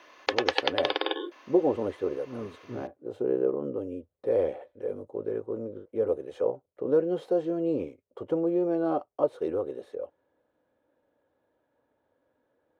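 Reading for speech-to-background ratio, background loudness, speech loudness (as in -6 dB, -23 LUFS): -1.0 dB, -29.5 LUFS, -30.5 LUFS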